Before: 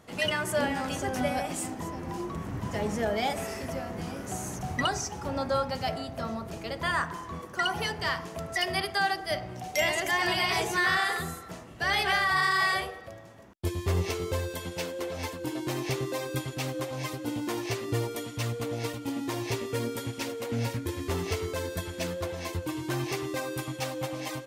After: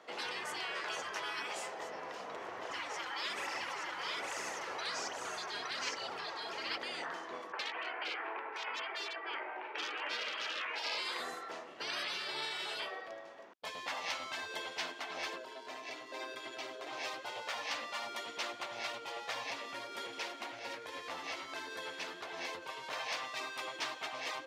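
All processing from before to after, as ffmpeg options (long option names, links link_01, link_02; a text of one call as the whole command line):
ffmpeg -i in.wav -filter_complex "[0:a]asettb=1/sr,asplit=3[link_01][link_02][link_03];[link_01]atrim=end=2.654[link_04];[link_02]atrim=start=2.65:end=6.78,asetpts=PTS-STARTPTS,afade=type=in:duration=0.004:curve=qsin,afade=type=out:start_time=4.126:duration=0.004:curve=qsin,aecho=1:1:866:0.668,atrim=end_sample=182133,aphaser=in_gain=1:out_gain=1:delay=5:decay=0.51:speed=1.2:type=triangular[link_05];[link_03]atrim=start=6.776[link_06];[link_04][link_05]acrossfade=duration=0.004:curve1=hsin:curve2=qsin[link_07];[link_07][link_06]acrossfade=duration=0.004:curve1=qsin:curve2=hsin,asettb=1/sr,asplit=3[link_08][link_09][link_10];[link_08]atrim=end=7.524[link_11];[link_09]atrim=start=7.52:end=10.98,asetpts=PTS-STARTPTS,afade=type=in:duration=0.004:curve=qsin,afade=type=out:start_time=3.456:duration=0.004:curve=qsin,highpass=frequency=340:width=0.5412,highpass=frequency=340:width=1.3066,equalizer=frequency=380:width_type=q:width=4:gain=7,equalizer=frequency=560:width_type=q:width=4:gain=-7,equalizer=frequency=890:width_type=q:width=4:gain=10,equalizer=frequency=1500:width_type=q:width=4:gain=7,equalizer=frequency=2400:width_type=q:width=4:gain=8,lowpass=frequency=2500:width=0.5412,lowpass=frequency=2500:width=1.3066,asoftclip=type=hard:threshold=-19.5dB[link_12];[link_10]atrim=start=10.976[link_13];[link_11][link_12]acrossfade=duration=0.004:curve1=hsin:curve2=qsin[link_14];[link_14][link_13]acrossfade=duration=0.004:curve1=qsin:curve2=hsin,asettb=1/sr,asplit=3[link_15][link_16][link_17];[link_15]atrim=end=15.364[link_18];[link_16]atrim=start=15.36:end=16.87,asetpts=PTS-STARTPTS,afade=type=in:duration=0.004:curve=qsin,afade=type=out:start_time=1.506:duration=0.004:curve=qsin,tremolo=f=120:d=0.571,aecho=1:1:3:0.87,atrim=end_sample=66591,acompressor=threshold=-36dB:ratio=6:attack=3.2:release=140:knee=1:detection=peak[link_19];[link_17]atrim=start=16.866[link_20];[link_18][link_19]acrossfade=duration=0.004:curve1=hsin:curve2=qsin[link_21];[link_21][link_20]acrossfade=duration=0.004:curve1=qsin:curve2=hsin,asettb=1/sr,asplit=3[link_22][link_23][link_24];[link_22]atrim=end=19.434[link_25];[link_23]atrim=start=19.43:end=22.93,asetpts=PTS-STARTPTS,afade=type=in:duration=0.004:curve=qsin,afade=type=out:start_time=3.496:duration=0.004:curve=qsin,equalizer=frequency=11000:width=4.2:gain=4.5,acompressor=threshold=-32dB:ratio=4:attack=3.2:release=140:knee=1:detection=peak[link_26];[link_24]atrim=start=22.926[link_27];[link_25][link_26]acrossfade=duration=0.004:curve1=hsin:curve2=qsin[link_28];[link_28][link_27]acrossfade=duration=0.004:curve1=qsin:curve2=hsin,highpass=210,afftfilt=real='re*lt(hypot(re,im),0.0562)':imag='im*lt(hypot(re,im),0.0562)':win_size=1024:overlap=0.75,acrossover=split=350 5500:gain=0.1 1 0.0891[link_29][link_30][link_31];[link_29][link_30][link_31]amix=inputs=3:normalize=0,volume=1.5dB" out.wav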